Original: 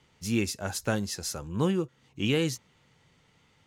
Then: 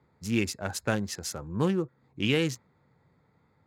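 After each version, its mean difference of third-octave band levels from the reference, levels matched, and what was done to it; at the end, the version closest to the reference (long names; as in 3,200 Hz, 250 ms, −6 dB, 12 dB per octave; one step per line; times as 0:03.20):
2.5 dB: adaptive Wiener filter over 15 samples
high-pass filter 60 Hz
dynamic equaliser 2,100 Hz, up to +4 dB, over −48 dBFS, Q 0.91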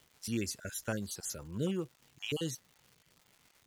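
4.5 dB: time-frequency cells dropped at random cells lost 31%
high-shelf EQ 5,300 Hz +7 dB
surface crackle 300 per second −42 dBFS
level −7.5 dB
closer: first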